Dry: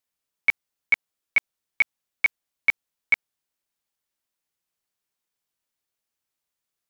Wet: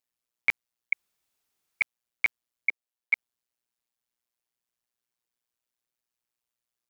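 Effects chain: 2.69–3.13 ladder high-pass 310 Hz, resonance 25%; AM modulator 120 Hz, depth 90%; 0.93–1.81 room tone

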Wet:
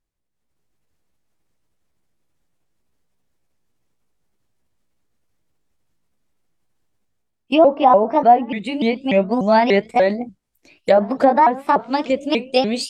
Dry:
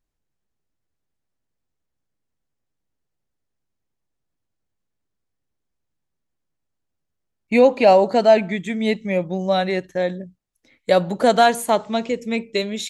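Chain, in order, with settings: repeated pitch sweeps +5.5 st, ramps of 0.294 s; treble ducked by the level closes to 1100 Hz, closed at -13 dBFS; AGC gain up to 11.5 dB; gain -1 dB

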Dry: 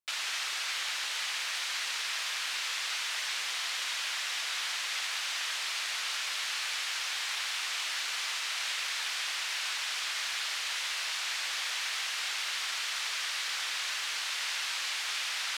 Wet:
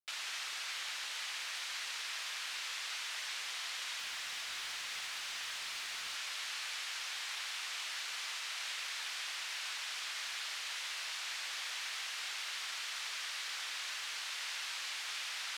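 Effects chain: 3.99–6.15 overloaded stage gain 29.5 dB; gain -7 dB

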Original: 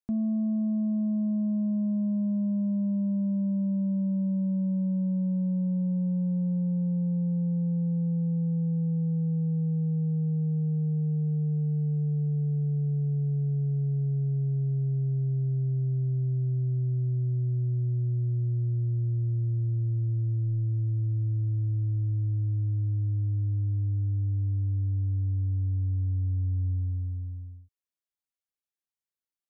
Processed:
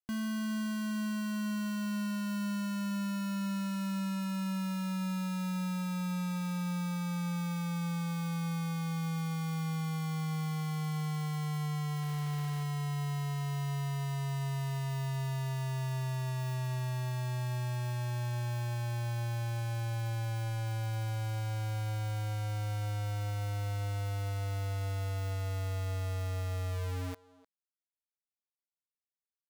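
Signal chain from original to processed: 12.01–12.62 added noise pink -54 dBFS; bit-crush 5-bit; speakerphone echo 0.3 s, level -14 dB; gain -9 dB

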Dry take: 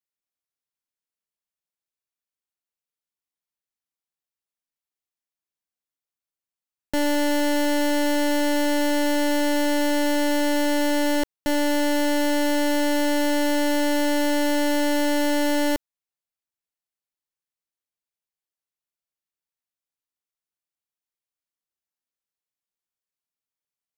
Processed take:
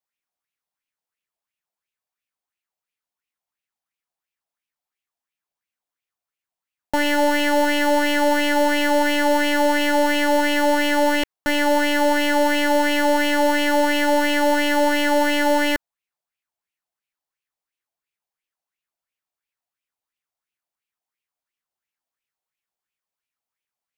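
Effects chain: LFO bell 2.9 Hz 680–2700 Hz +14 dB

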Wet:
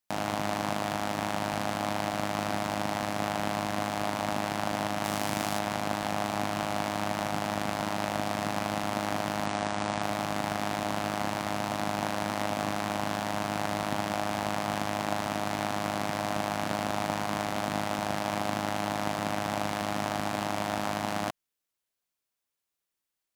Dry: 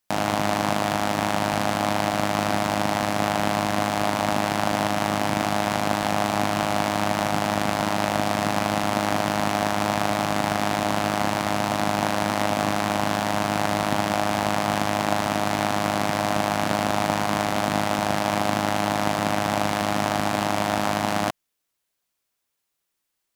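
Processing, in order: 5.04–5.59 high shelf 4500 Hz +8 dB; 9.46–10.02 steep low-pass 9600 Hz 72 dB/oct; gain -7.5 dB

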